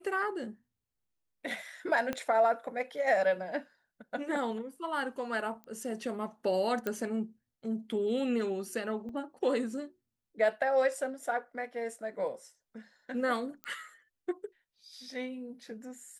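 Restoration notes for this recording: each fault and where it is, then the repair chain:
2.13 s: pop -19 dBFS
5.64 s: pop -33 dBFS
6.87 s: pop -19 dBFS
9.09 s: dropout 2.7 ms
13.64 s: pop -25 dBFS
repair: de-click; interpolate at 9.09 s, 2.7 ms

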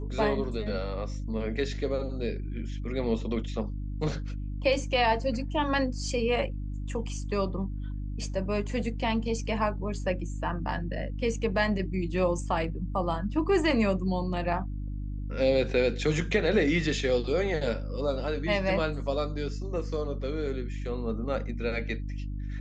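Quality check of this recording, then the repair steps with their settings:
hum 50 Hz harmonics 6 -34 dBFS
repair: de-hum 50 Hz, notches 6

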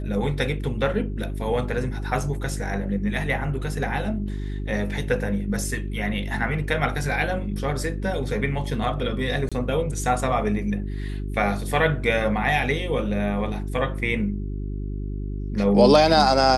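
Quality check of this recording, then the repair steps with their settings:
hum 50 Hz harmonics 8 -29 dBFS
9.49–9.52 s: dropout 26 ms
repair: de-hum 50 Hz, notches 8; interpolate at 9.49 s, 26 ms

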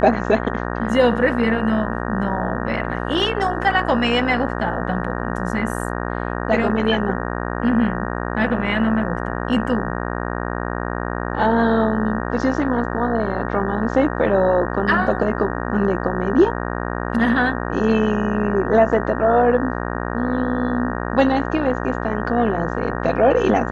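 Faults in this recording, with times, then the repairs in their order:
buzz 60 Hz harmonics 31 -25 dBFS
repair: de-hum 60 Hz, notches 31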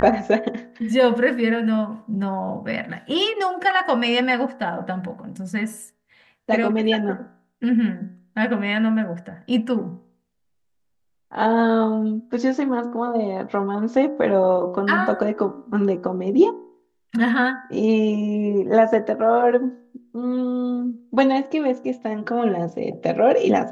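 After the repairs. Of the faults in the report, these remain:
nothing left

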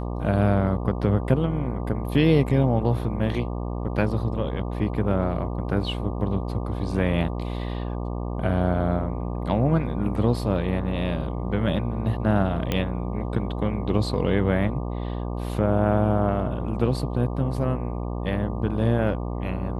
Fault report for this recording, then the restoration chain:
buzz 60 Hz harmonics 20 -29 dBFS
12.72 s: pop -11 dBFS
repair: de-click; de-hum 60 Hz, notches 20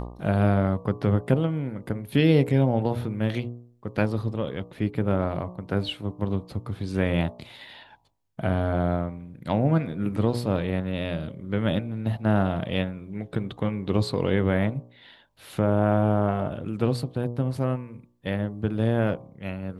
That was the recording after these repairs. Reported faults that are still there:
nothing left

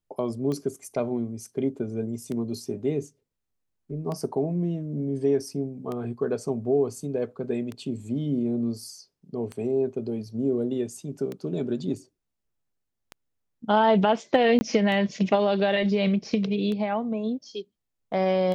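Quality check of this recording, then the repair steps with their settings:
tick 33 1/3 rpm -21 dBFS
14.59–14.61 s: dropout 20 ms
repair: de-click; interpolate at 14.59 s, 20 ms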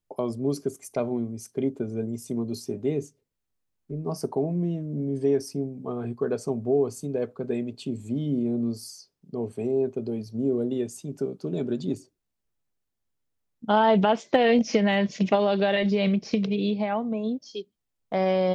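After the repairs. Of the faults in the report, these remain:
nothing left

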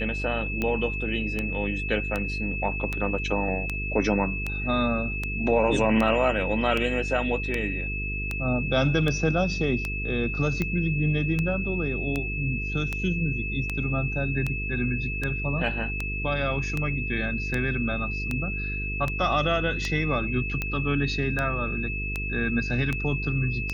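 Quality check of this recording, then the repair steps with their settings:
buzz 50 Hz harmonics 9 -32 dBFS
tick 78 rpm -14 dBFS
whine 2.6 kHz -31 dBFS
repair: de-click; de-hum 50 Hz, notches 9; band-stop 2.6 kHz, Q 30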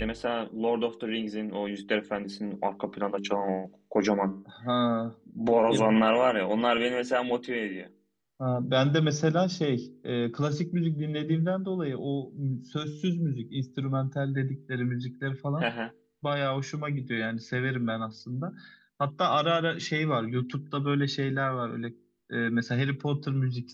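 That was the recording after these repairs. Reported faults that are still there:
nothing left

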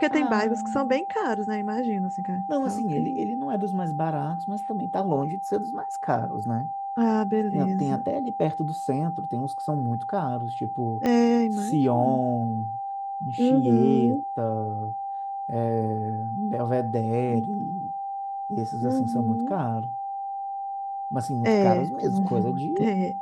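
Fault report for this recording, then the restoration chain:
whine 790 Hz -29 dBFS
11.06 s: pop -14 dBFS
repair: de-click; band-stop 790 Hz, Q 30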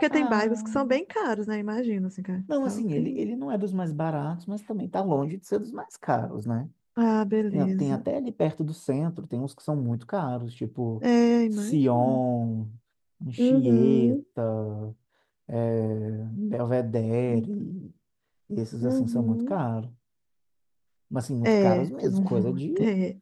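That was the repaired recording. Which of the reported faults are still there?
11.06 s: pop

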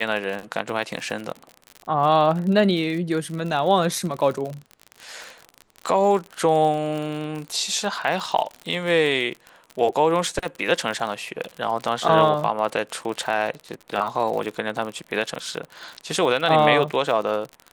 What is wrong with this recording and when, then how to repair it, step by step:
crackle 47 per s -28 dBFS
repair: de-click

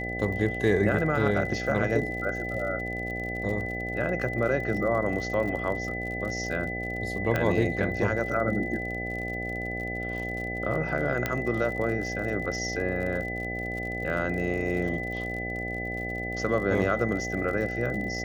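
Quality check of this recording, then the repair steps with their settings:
buzz 60 Hz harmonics 13 -35 dBFS
crackle 52 per s -35 dBFS
whine 2 kHz -33 dBFS
7.36 s: pop -13 dBFS
11.26 s: pop -12 dBFS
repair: de-click; de-hum 60 Hz, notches 13; band-stop 2 kHz, Q 30

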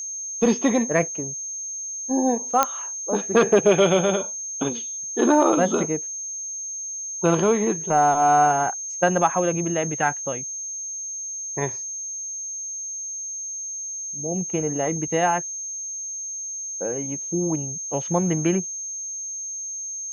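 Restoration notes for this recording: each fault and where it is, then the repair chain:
whine 6.4 kHz -29 dBFS
2.63 s: pop -3 dBFS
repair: de-click; band-stop 6.4 kHz, Q 30

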